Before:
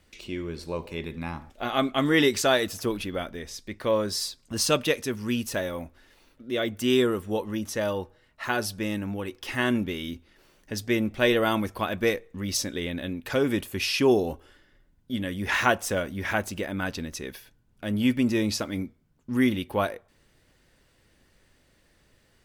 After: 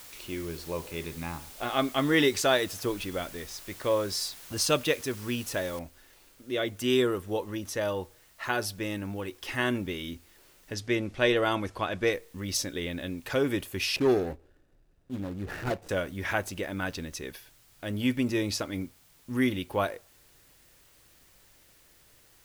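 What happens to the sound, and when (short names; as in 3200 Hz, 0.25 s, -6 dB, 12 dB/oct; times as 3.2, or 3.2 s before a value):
5.79 noise floor step -46 dB -59 dB
10.74–12.13 LPF 8200 Hz
13.96–15.89 median filter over 41 samples
whole clip: bell 220 Hz -10 dB 0.2 oct; gain -2 dB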